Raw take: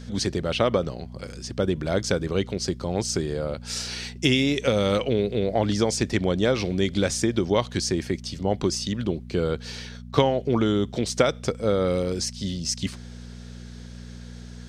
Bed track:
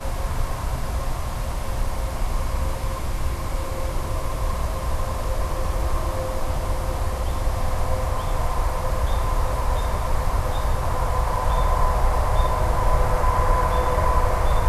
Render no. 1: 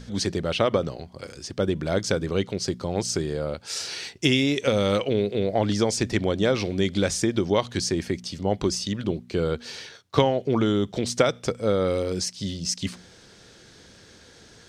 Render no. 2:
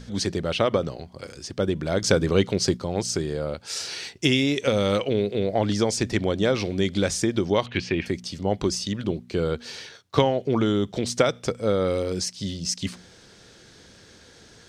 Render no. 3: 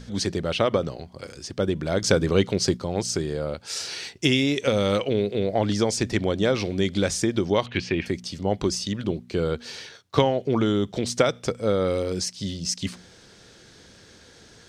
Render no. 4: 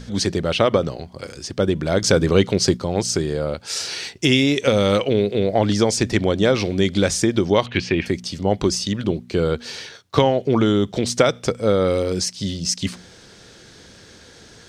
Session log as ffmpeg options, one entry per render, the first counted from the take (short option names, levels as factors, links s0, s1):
-af "bandreject=f=60:t=h:w=4,bandreject=f=120:t=h:w=4,bandreject=f=180:t=h:w=4,bandreject=f=240:t=h:w=4"
-filter_complex "[0:a]asettb=1/sr,asplit=3[s0][s1][s2];[s0]atrim=end=2.024[s3];[s1]atrim=start=2.02:end=2.77,asetpts=PTS-STARTPTS,afade=t=in:d=0.004:c=qsin,afade=t=out:st=0.746:d=0.004:c=qsin,acontrast=26[s4];[s2]atrim=start=2.766[s5];[s3][s4]acrossfade=d=0.004:c1=hsin:c2=qsin[s6];[s6][s5]acrossfade=d=0.004:c1=qsin:c2=hsin,asettb=1/sr,asplit=3[s7][s8][s9];[s7]atrim=end=7.664[s10];[s8]atrim=start=7.66:end=8.06,asetpts=PTS-STARTPTS,afade=t=in:d=0.004:c=qsin,afade=t=out:st=0.396:d=0.004:c=qsin,lowpass=f=2600:t=q:w=4.5[s11];[s9]atrim=start=8.056[s12];[s10][s11]acrossfade=d=0.004:c1=hsin:c2=qsin[s13];[s13][s12]acrossfade=d=0.004:c1=qsin:c2=hsin"
-af anull
-af "volume=1.78,alimiter=limit=0.794:level=0:latency=1"